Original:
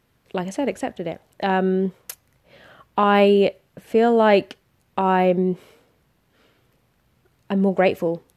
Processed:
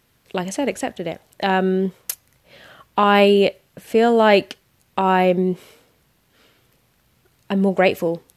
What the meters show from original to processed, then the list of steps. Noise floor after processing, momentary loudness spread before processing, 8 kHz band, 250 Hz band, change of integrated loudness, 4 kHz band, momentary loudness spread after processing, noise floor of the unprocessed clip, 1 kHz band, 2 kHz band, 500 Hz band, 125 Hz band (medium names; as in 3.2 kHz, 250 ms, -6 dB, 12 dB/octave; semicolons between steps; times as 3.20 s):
-63 dBFS, 16 LU, no reading, +1.0 dB, +1.5 dB, +6.0 dB, 16 LU, -65 dBFS, +2.0 dB, +4.0 dB, +1.5 dB, +1.0 dB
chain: treble shelf 2.5 kHz +8 dB; trim +1 dB